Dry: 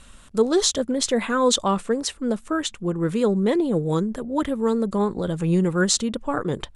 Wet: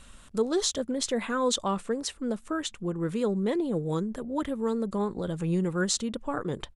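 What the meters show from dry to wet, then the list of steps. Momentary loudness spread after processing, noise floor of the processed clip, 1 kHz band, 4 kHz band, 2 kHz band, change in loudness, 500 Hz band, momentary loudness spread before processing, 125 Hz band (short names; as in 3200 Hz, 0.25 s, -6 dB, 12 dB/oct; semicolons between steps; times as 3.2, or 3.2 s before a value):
6 LU, -52 dBFS, -7.0 dB, -7.0 dB, -7.0 dB, -7.0 dB, -7.0 dB, 7 LU, -6.5 dB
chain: in parallel at -1.5 dB: compressor, threshold -31 dBFS, peak gain reduction 16.5 dB; on the sum: downsampling 32000 Hz; gain -8.5 dB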